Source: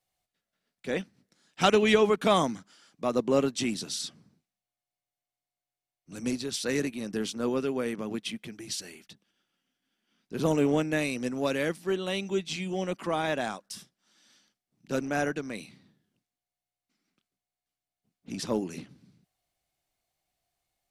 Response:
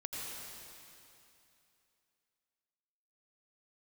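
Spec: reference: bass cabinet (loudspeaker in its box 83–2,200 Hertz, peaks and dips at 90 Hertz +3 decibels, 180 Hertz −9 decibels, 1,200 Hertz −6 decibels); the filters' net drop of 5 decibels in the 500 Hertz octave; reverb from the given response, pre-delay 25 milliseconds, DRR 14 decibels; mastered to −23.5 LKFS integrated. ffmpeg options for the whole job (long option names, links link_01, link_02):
-filter_complex "[0:a]equalizer=frequency=500:width_type=o:gain=-6,asplit=2[link_01][link_02];[1:a]atrim=start_sample=2205,adelay=25[link_03];[link_02][link_03]afir=irnorm=-1:irlink=0,volume=-15dB[link_04];[link_01][link_04]amix=inputs=2:normalize=0,highpass=frequency=83:width=0.5412,highpass=frequency=83:width=1.3066,equalizer=frequency=90:width_type=q:width=4:gain=3,equalizer=frequency=180:width_type=q:width=4:gain=-9,equalizer=frequency=1200:width_type=q:width=4:gain=-6,lowpass=frequency=2200:width=0.5412,lowpass=frequency=2200:width=1.3066,volume=10dB"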